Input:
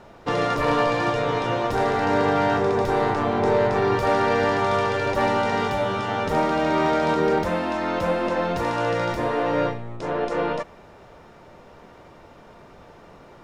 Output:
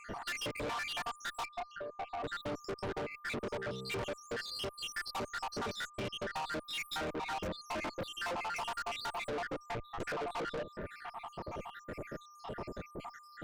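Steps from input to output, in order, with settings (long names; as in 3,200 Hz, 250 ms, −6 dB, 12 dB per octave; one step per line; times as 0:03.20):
time-frequency cells dropped at random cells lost 82%
0:03.51–0:03.96: hum removal 65.01 Hz, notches 8
0:05.86–0:06.34: low-pass filter 6,000 Hz → 2,800 Hz 12 dB per octave
downward compressor 16 to 1, threshold −35 dBFS, peak gain reduction 18.5 dB
0:01.45–0:02.24: formant filter a
tube saturation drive 47 dB, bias 0.3
steady tone 1,200 Hz −66 dBFS
level +11.5 dB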